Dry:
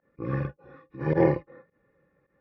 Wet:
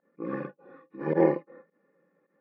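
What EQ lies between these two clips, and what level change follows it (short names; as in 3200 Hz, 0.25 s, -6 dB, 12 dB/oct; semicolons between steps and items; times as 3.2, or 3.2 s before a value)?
brick-wall FIR high-pass 160 Hz; LPF 1800 Hz 6 dB/oct; 0.0 dB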